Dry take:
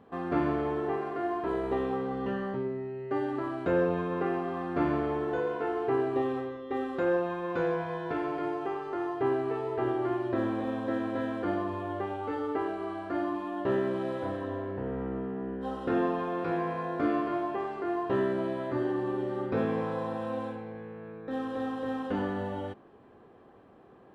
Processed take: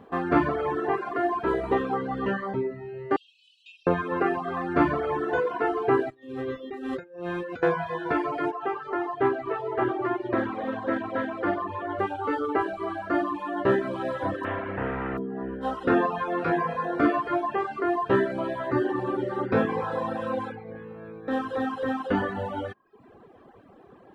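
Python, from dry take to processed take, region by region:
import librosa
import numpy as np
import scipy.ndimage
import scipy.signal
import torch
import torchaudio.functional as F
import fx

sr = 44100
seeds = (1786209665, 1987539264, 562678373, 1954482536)

y = fx.chain(x, sr, fx.brickwall_highpass(low_hz=2400.0),
    fx.air_absorb(metres=89.0), at=(3.16, 3.87))
y = fx.chain(y, sr, fx.peak_eq(hz=990.0, db=-10.5, octaves=1.3),
    fx.over_compress(threshold_db=-39.0, ratio=-1.0), at=(6.1, 7.63))
y = fx.chain(y, sr, fx.lowpass(hz=3300.0, slope=6),
    fx.low_shelf(hz=270.0, db=-5.5),
    fx.doppler_dist(depth_ms=0.12), at=(8.51, 11.99))
y = fx.spec_flatten(y, sr, power=0.58, at=(14.43, 15.17), fade=0.02)
y = fx.lowpass(y, sr, hz=2600.0, slope=24, at=(14.43, 15.17), fade=0.02)
y = fx.dereverb_blind(y, sr, rt60_s=0.58)
y = fx.dynamic_eq(y, sr, hz=1500.0, q=1.0, threshold_db=-51.0, ratio=4.0, max_db=5)
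y = fx.dereverb_blind(y, sr, rt60_s=0.75)
y = y * 10.0 ** (7.0 / 20.0)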